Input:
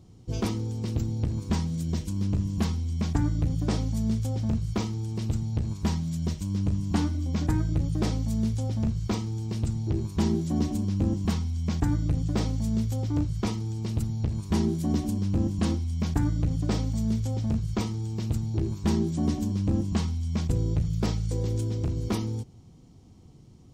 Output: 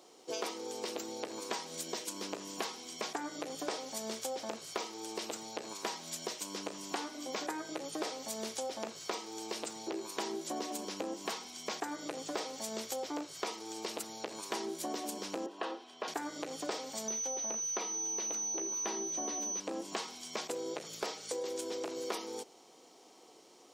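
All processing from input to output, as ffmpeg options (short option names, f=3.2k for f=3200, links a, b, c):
-filter_complex "[0:a]asettb=1/sr,asplit=3[a][b][c];[a]atrim=end=15.464[d];[b]atrim=start=15.46:end=16.08,asetpts=PTS-STARTPTS,afade=t=in:d=0.004:c=qsin,afade=t=out:st=0.616:d=0.004:c=qsin,acrossover=split=290 3300:gain=0.126 1 0.0794[e][f][g];[e][f][g]amix=inputs=3:normalize=0,bandreject=f=2.2k:w=5.6[h];[c]atrim=start=16.076[i];[d][h]acrossfade=d=0.004:c1=hsin:c2=qsin[j];[j][i]acrossfade=d=0.004:c1=qsin:c2=hsin,asettb=1/sr,asplit=3[k][l][m];[k]atrim=end=17.084[n];[l]atrim=start=17.08:end=19.6,asetpts=PTS-STARTPTS,afade=t=in:d=0.004:c=qsin,afade=t=out:st=2.516:d=0.004:c=qsin,acrossover=split=6800[o][p];[p]acompressor=threshold=-57dB:ratio=4:attack=1:release=60[q];[o][q]amix=inputs=2:normalize=0,equalizer=f=7.6k:t=o:w=0.62:g=-10,aeval=exprs='val(0)+0.0178*sin(2*PI*6000*n/s)':c=same[r];[m]atrim=start=19.596[s];[n][r]acrossfade=d=0.004:c1=hsin:c2=qsin[t];[t][s]acrossfade=d=0.004:c1=qsin:c2=hsin,highpass=f=440:w=0.5412,highpass=f=440:w=1.3066,acompressor=threshold=-43dB:ratio=6,volume=8dB"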